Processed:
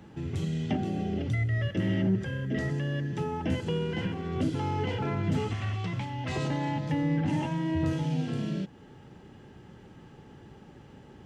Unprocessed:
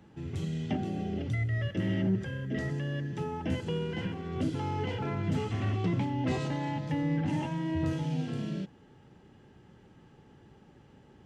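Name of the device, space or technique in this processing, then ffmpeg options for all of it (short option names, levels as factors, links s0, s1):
parallel compression: -filter_complex "[0:a]asettb=1/sr,asplit=3[s0][s1][s2];[s0]atrim=end=5.534[s3];[s1]atrim=start=5.53:end=6.36,asetpts=PTS-STARTPTS,afade=t=in:d=0.004:c=qsin,afade=t=out:st=0.826:d=0.004:c=qsin,equalizer=f=300:w=0.66:g=-13.5[s4];[s2]atrim=start=6.356[s5];[s3][s4]acrossfade=d=0.004:c1=hsin:c2=qsin[s6];[s6][s5]acrossfade=d=0.004:c1=qsin:c2=hsin,asplit=2[s7][s8];[s8]acompressor=threshold=0.00794:ratio=6,volume=0.841[s9];[s7][s9]amix=inputs=2:normalize=0,volume=1.12"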